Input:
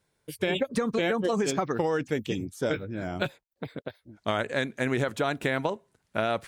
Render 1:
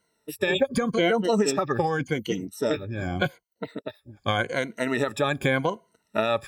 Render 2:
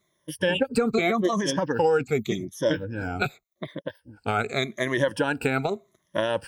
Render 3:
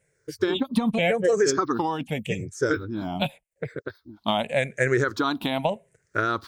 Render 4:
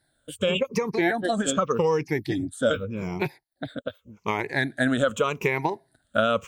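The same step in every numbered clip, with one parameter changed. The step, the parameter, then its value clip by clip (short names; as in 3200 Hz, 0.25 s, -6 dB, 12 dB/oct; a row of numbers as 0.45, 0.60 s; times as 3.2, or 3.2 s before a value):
moving spectral ripple, ripples per octave: 1.9, 1.2, 0.51, 0.79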